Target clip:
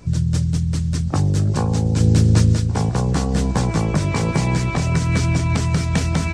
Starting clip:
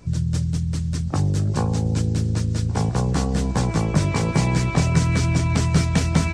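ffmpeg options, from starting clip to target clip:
-filter_complex "[0:a]alimiter=limit=-12dB:level=0:latency=1:release=208,asplit=3[a][b][c];[a]afade=t=out:st=2:d=0.02[d];[b]acontrast=44,afade=t=in:st=2:d=0.02,afade=t=out:st=2.54:d=0.02[e];[c]afade=t=in:st=2.54:d=0.02[f];[d][e][f]amix=inputs=3:normalize=0,volume=3.5dB"

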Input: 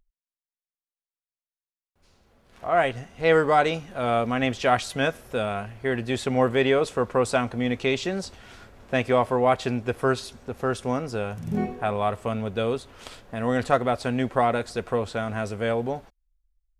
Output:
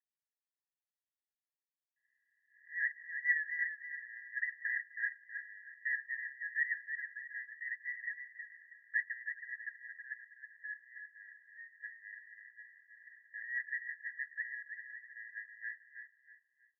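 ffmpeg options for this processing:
-af "asuperpass=centerf=1800:order=20:qfactor=5.2,aecho=1:1:321|642|963|1284:0.422|0.135|0.0432|0.0138"

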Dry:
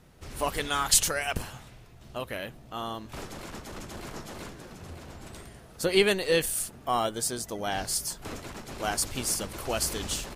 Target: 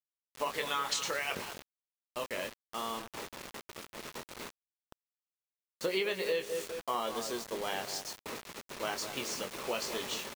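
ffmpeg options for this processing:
-filter_complex "[0:a]asplit=2[a][b];[b]adelay=22,volume=-7dB[c];[a][c]amix=inputs=2:normalize=0,asplit=2[d][e];[e]adelay=202,lowpass=f=1.2k:p=1,volume=-9.5dB,asplit=2[f][g];[g]adelay=202,lowpass=f=1.2k:p=1,volume=0.46,asplit=2[h][i];[i]adelay=202,lowpass=f=1.2k:p=1,volume=0.46,asplit=2[j][k];[k]adelay=202,lowpass=f=1.2k:p=1,volume=0.46,asplit=2[l][m];[m]adelay=202,lowpass=f=1.2k:p=1,volume=0.46[n];[f][h][j][l][n]amix=inputs=5:normalize=0[o];[d][o]amix=inputs=2:normalize=0,agate=range=-11dB:threshold=-39dB:ratio=16:detection=peak,highpass=300,equalizer=f=300:t=q:w=4:g=-6,equalizer=f=710:t=q:w=4:g=-7,equalizer=f=1.5k:t=q:w=4:g=-6,equalizer=f=3.2k:t=q:w=4:g=-3,equalizer=f=4.9k:t=q:w=4:g=-7,lowpass=f=5.5k:w=0.5412,lowpass=f=5.5k:w=1.3066,bandreject=f=760:w=25,acrusher=bits=6:mix=0:aa=0.000001,acompressor=threshold=-29dB:ratio=6"

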